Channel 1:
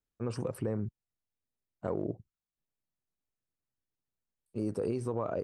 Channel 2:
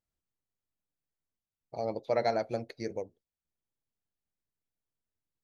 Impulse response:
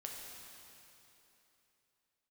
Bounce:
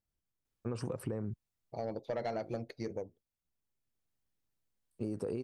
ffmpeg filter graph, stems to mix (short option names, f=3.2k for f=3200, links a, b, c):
-filter_complex "[0:a]adelay=450,volume=1.5dB[a];[1:a]lowshelf=f=300:g=6.5,bandreject=f=4k:w=29,asoftclip=type=tanh:threshold=-21dB,volume=-3dB,asplit=2[b][c];[c]apad=whole_len=259516[d];[a][d]sidechaincompress=threshold=-54dB:ratio=4:attack=16:release=757[e];[e][b]amix=inputs=2:normalize=0,acompressor=threshold=-33dB:ratio=6"